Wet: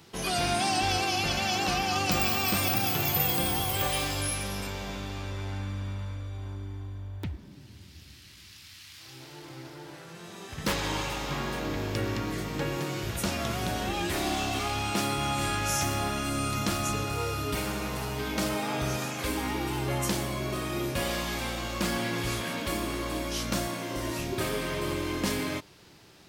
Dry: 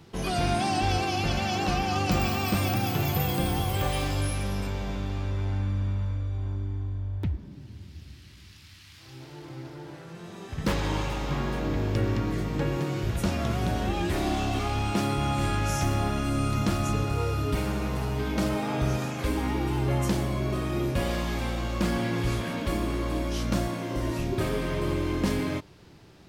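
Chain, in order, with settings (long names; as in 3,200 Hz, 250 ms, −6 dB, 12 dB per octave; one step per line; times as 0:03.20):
spectral tilt +2 dB per octave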